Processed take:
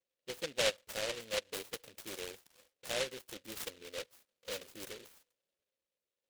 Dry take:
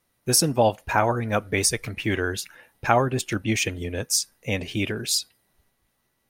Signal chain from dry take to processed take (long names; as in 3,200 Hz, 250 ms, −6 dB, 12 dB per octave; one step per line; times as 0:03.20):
formant filter e
low-pass that shuts in the quiet parts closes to 2,100 Hz, open at −27 dBFS
short delay modulated by noise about 2,800 Hz, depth 0.24 ms
level −6 dB